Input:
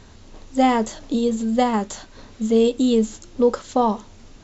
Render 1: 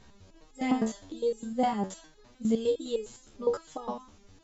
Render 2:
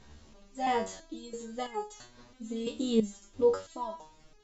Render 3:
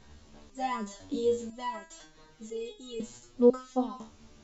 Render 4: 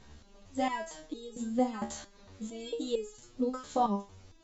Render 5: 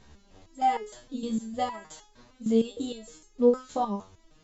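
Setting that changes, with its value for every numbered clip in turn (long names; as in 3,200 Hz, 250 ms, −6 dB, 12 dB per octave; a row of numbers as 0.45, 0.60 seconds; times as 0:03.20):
step-sequenced resonator, speed: 9.8, 3, 2, 4.4, 6.5 Hertz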